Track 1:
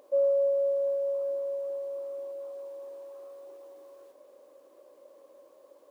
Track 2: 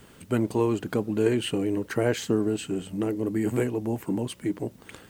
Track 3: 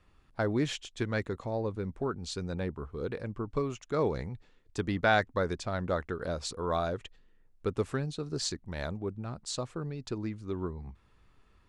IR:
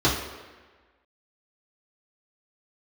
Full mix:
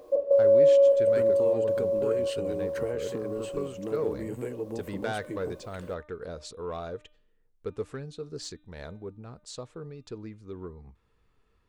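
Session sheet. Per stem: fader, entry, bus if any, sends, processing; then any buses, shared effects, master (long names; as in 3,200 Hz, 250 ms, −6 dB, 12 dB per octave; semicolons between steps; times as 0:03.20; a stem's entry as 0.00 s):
+1.5 dB, 0.00 s, send −16 dB, gate pattern "x.xxxx.xx" 98 BPM
−8.0 dB, 0.85 s, no send, downward compressor, threshold −25 dBFS, peak gain reduction 8 dB
−6.0 dB, 0.00 s, no send, hum removal 301.9 Hz, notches 13; soft clipping −20 dBFS, distortion −18 dB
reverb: on, RT60 1.4 s, pre-delay 3 ms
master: parametric band 460 Hz +9 dB 0.25 octaves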